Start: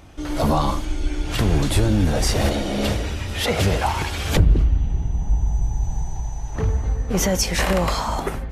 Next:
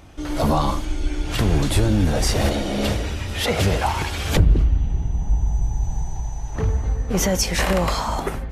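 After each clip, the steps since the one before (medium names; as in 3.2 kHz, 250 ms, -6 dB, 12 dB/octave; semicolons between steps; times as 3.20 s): no audible change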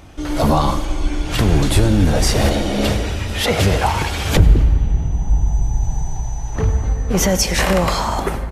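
delay 94 ms -21 dB; on a send at -15 dB: reverberation RT60 2.8 s, pre-delay 82 ms; on the sum: trim +4 dB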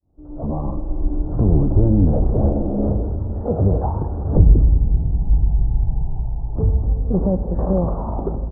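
fade-in on the opening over 1.15 s; Gaussian low-pass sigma 12 samples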